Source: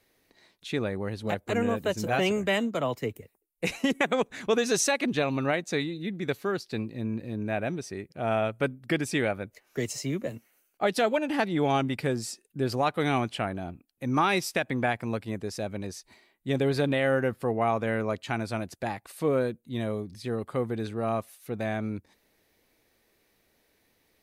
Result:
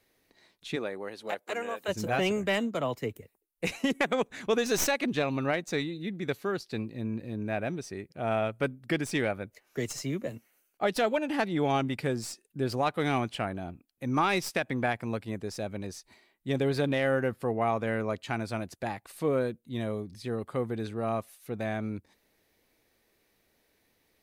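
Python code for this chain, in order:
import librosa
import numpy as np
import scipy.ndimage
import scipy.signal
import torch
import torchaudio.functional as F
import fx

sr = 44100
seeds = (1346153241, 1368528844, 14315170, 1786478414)

y = fx.tracing_dist(x, sr, depth_ms=0.042)
y = fx.highpass(y, sr, hz=fx.line((0.75, 300.0), (1.87, 680.0)), slope=12, at=(0.75, 1.87), fade=0.02)
y = F.gain(torch.from_numpy(y), -2.0).numpy()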